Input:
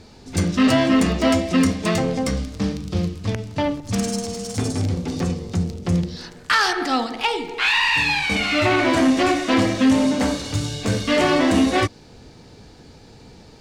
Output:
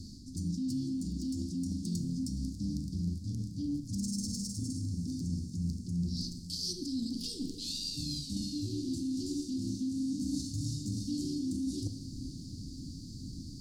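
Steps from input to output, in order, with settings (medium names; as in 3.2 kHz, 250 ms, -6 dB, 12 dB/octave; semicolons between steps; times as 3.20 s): Chebyshev band-stop 290–4600 Hz, order 4; high-order bell 1.4 kHz -9.5 dB; peak limiter -16.5 dBFS, peak gain reduction 8.5 dB; reverse; compression 6:1, threshold -37 dBFS, peak gain reduction 16 dB; reverse; echo that smears into a reverb 593 ms, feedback 67%, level -16 dB; on a send at -10 dB: reverberation RT60 0.90 s, pre-delay 26 ms; on the sum: trim +2.5 dB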